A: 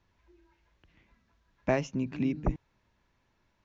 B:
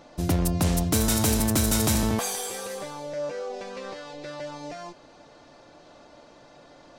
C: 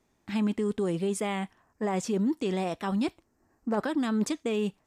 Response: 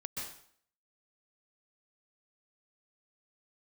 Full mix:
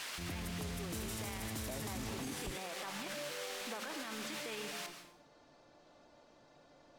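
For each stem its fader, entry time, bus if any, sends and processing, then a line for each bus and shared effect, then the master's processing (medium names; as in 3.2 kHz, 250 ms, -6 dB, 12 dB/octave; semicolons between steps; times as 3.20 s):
-7.5 dB, 0.00 s, no send, overload inside the chain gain 20.5 dB
-15.0 dB, 0.00 s, send -5.5 dB, none
-3.5 dB, 0.00 s, send -4 dB, compression 2:1, threshold -30 dBFS, peak gain reduction 4.5 dB; word length cut 6-bit, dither triangular; band-pass filter 2 kHz, Q 0.64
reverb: on, RT60 0.60 s, pre-delay 118 ms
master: peak limiter -33 dBFS, peak gain reduction 12.5 dB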